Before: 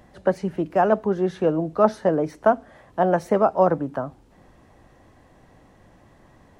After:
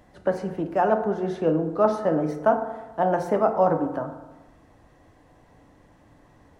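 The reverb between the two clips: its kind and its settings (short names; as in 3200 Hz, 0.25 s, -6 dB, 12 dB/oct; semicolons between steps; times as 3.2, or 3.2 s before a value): FDN reverb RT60 1.1 s, low-frequency decay 0.95×, high-frequency decay 0.4×, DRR 5 dB; gain -3.5 dB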